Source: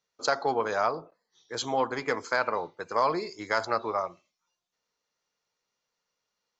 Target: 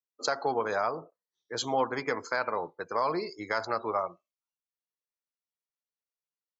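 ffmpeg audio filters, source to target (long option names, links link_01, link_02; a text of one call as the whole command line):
ffmpeg -i in.wav -af "afftdn=noise_reduction=22:noise_floor=-46,alimiter=limit=-17dB:level=0:latency=1:release=153" out.wav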